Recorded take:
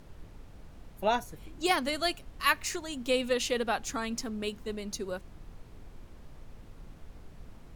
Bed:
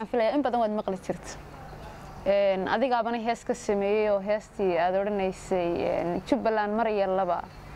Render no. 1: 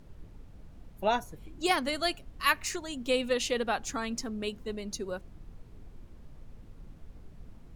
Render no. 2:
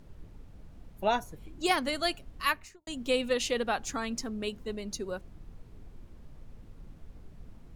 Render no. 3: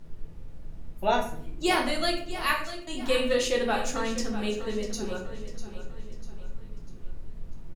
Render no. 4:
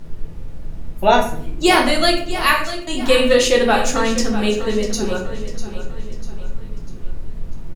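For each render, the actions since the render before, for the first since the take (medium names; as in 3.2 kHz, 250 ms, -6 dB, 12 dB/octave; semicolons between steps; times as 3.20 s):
noise reduction 6 dB, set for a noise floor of -51 dBFS
2.37–2.87 s: studio fade out
feedback delay 647 ms, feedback 44%, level -12.5 dB; simulated room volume 72 m³, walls mixed, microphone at 0.76 m
trim +11.5 dB; peak limiter -1 dBFS, peak gain reduction 1.5 dB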